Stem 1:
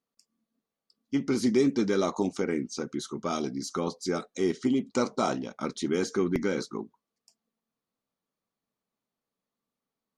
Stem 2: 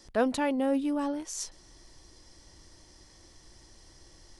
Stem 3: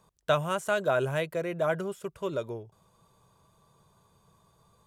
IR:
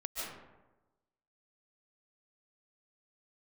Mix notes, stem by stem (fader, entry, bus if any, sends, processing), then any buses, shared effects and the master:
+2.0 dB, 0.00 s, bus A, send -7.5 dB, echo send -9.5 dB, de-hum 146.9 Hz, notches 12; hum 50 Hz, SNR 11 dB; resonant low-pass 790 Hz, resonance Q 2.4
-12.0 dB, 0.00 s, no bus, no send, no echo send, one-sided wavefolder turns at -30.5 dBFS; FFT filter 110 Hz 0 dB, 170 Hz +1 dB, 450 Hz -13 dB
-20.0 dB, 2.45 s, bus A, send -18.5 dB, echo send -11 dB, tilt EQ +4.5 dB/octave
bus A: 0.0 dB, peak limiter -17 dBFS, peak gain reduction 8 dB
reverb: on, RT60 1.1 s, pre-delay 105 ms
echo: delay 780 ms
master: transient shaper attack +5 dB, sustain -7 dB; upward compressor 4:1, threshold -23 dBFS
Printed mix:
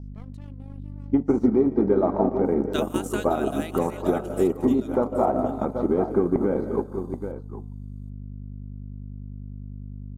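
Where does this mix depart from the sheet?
stem 3 -20.0 dB -> -9.0 dB; master: missing upward compressor 4:1, threshold -23 dBFS

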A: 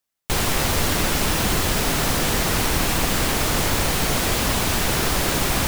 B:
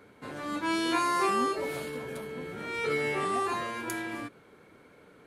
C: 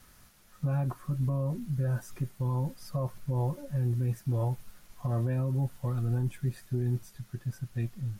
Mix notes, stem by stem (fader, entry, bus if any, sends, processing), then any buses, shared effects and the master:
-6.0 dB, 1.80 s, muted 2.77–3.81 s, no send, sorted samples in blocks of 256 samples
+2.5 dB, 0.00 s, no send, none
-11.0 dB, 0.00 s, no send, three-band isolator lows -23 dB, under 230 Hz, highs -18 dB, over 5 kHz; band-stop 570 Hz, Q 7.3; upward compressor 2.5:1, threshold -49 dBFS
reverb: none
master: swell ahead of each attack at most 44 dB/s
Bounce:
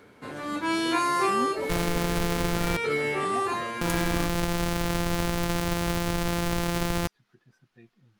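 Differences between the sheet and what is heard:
stem A: entry 1.80 s -> 1.40 s; master: missing swell ahead of each attack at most 44 dB/s

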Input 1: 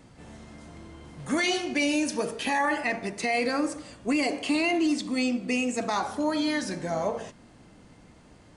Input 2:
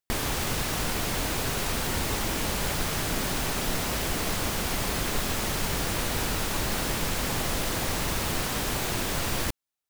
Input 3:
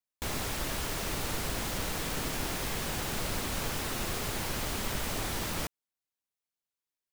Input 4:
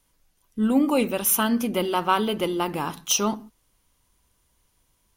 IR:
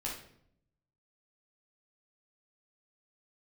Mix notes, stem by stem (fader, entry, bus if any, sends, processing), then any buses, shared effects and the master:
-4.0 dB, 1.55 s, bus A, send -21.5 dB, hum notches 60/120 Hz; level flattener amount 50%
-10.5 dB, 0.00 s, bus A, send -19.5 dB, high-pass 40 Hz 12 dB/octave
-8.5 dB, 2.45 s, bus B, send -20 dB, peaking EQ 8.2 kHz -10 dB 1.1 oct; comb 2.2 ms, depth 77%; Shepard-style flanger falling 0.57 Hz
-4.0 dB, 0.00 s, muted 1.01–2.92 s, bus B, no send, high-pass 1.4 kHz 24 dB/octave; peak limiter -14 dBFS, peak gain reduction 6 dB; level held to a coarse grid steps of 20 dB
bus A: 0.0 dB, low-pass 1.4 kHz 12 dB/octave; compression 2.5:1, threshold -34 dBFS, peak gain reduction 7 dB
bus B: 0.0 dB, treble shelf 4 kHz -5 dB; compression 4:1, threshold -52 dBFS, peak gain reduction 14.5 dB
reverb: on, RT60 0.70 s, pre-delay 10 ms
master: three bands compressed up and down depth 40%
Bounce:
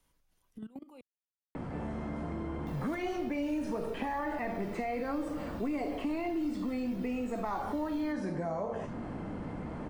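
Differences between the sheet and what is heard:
stem 2: muted; stem 4: missing high-pass 1.4 kHz 24 dB/octave

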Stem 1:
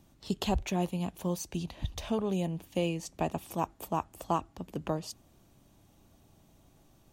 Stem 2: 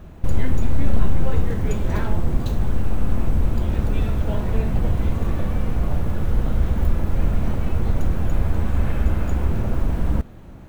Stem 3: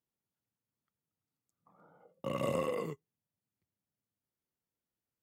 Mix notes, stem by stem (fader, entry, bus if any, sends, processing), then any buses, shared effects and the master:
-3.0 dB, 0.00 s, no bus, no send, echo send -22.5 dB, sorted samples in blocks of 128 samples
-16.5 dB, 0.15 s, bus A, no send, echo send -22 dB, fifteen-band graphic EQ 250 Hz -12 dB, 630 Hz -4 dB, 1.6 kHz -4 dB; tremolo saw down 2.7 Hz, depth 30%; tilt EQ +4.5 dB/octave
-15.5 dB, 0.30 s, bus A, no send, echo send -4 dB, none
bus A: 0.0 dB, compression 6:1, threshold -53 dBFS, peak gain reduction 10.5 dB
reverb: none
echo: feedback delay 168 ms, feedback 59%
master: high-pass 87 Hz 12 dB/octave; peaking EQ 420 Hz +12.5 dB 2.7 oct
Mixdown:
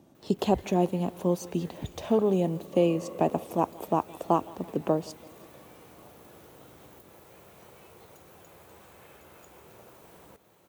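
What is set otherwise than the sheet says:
stem 1: missing sorted samples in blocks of 128 samples; stem 2: missing tremolo saw down 2.7 Hz, depth 30%

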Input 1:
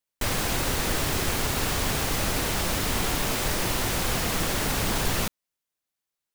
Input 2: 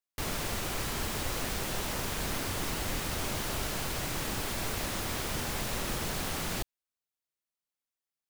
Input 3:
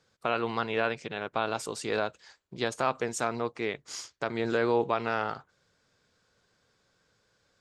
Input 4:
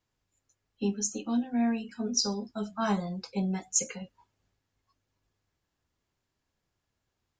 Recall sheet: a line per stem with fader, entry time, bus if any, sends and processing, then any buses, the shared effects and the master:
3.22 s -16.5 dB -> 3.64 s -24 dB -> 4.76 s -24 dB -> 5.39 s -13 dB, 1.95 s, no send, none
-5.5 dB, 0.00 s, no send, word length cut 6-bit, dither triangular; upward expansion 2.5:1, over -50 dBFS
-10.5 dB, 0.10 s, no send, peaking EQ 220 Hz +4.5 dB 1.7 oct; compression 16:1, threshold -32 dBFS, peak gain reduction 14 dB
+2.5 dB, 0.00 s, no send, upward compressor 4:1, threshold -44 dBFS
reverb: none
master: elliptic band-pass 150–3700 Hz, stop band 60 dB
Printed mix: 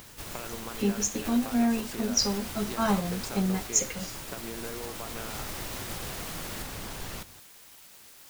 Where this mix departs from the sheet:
stem 3 -10.5 dB -> -4.0 dB; master: missing elliptic band-pass 150–3700 Hz, stop band 60 dB

